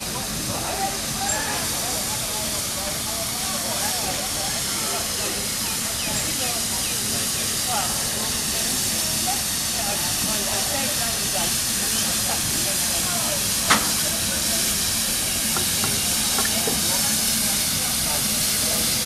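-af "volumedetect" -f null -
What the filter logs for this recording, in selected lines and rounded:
mean_volume: -23.5 dB
max_volume: -2.9 dB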